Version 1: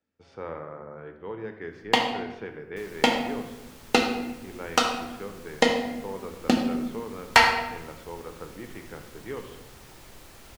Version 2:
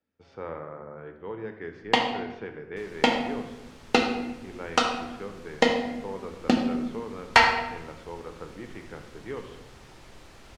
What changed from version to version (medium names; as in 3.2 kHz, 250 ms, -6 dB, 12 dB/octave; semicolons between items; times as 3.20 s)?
master: add distance through air 61 m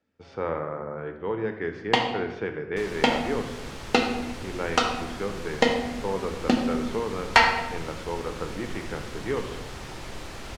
speech +7.5 dB; second sound +11.5 dB